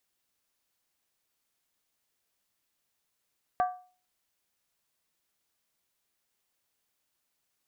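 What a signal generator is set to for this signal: skin hit, lowest mode 730 Hz, decay 0.40 s, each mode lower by 8 dB, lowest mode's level -20.5 dB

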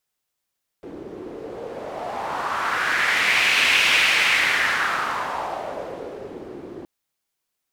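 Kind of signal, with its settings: wind-like swept noise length 6.02 s, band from 350 Hz, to 2500 Hz, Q 2.9, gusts 1, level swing 19.5 dB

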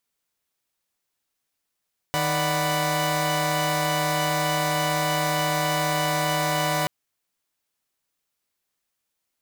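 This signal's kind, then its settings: chord D#3/D5/F#5/B5 saw, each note -25 dBFS 4.73 s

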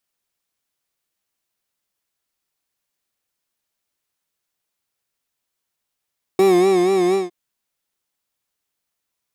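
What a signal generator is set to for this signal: synth patch with vibrato F#4, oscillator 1 triangle, oscillator 2 square, interval +12 st, oscillator 2 level -16 dB, sub -18 dB, noise -30 dB, filter lowpass, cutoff 7300 Hz, Q 1.1, filter envelope 1 oct, attack 2 ms, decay 0.48 s, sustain -4 dB, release 0.16 s, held 0.75 s, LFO 4.2 Hz, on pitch 92 cents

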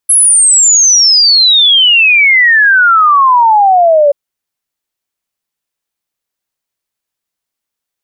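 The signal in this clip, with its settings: log sweep 11000 Hz -> 560 Hz 4.03 s -3.5 dBFS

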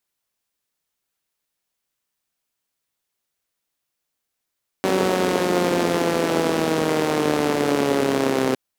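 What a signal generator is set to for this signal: four-cylinder engine model, changing speed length 3.71 s, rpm 5700, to 3900, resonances 280/410 Hz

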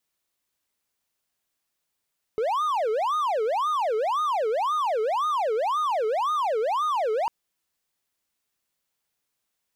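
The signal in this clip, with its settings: siren wail 427–1240 Hz 1.9/s triangle -20 dBFS 4.90 s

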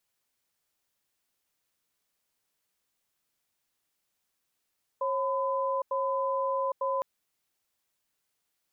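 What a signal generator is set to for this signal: cadence 542 Hz, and 1010 Hz, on 0.81 s, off 0.09 s, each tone -29 dBFS 2.01 s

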